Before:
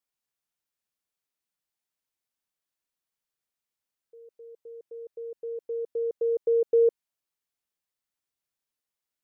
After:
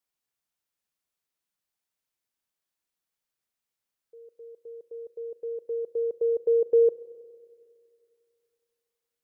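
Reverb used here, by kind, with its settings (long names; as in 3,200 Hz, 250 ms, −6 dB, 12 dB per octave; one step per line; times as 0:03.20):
spring reverb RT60 2.5 s, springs 32/46 ms, chirp 70 ms, DRR 16 dB
level +1 dB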